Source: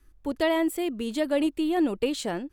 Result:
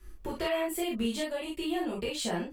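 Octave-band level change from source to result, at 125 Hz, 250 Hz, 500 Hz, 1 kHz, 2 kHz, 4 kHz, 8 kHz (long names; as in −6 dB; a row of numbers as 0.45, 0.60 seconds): can't be measured, −7.5 dB, −5.5 dB, −4.5 dB, −4.0 dB, −0.5 dB, +1.0 dB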